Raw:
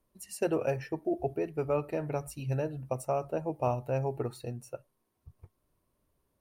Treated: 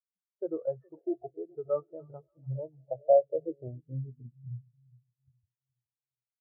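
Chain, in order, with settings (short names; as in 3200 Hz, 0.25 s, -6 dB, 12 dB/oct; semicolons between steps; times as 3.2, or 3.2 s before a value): split-band echo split 630 Hz, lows 0.417 s, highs 0.29 s, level -11.5 dB; low-pass sweep 1300 Hz -> 150 Hz, 2.35–4.6; spectral expander 2.5:1; gain +2 dB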